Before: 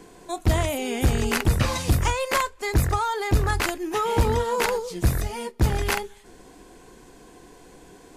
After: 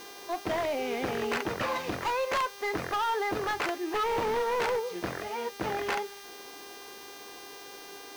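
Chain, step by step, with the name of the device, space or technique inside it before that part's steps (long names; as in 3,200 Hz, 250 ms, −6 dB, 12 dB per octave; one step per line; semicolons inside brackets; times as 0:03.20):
aircraft radio (band-pass filter 370–2,300 Hz; hard clipping −25.5 dBFS, distortion −10 dB; hum with harmonics 400 Hz, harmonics 16, −48 dBFS −2 dB per octave; white noise bed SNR 21 dB)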